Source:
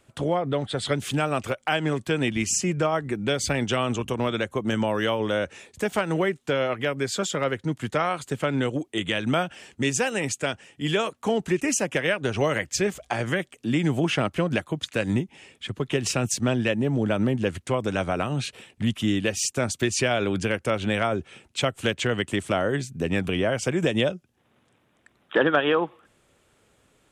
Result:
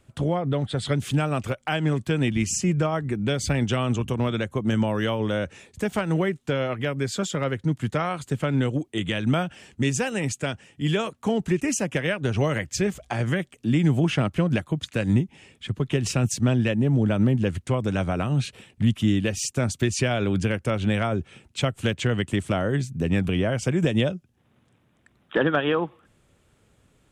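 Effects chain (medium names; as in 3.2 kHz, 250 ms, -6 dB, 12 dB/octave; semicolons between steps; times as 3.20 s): tone controls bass +9 dB, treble 0 dB; trim -2.5 dB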